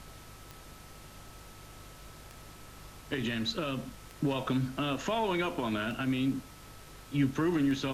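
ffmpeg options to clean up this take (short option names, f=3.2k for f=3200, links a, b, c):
-af "adeclick=t=4,bandreject=f=50.9:t=h:w=4,bandreject=f=101.8:t=h:w=4,bandreject=f=152.7:t=h:w=4,bandreject=f=1.3k:w=30,afftdn=nr=27:nf=-51"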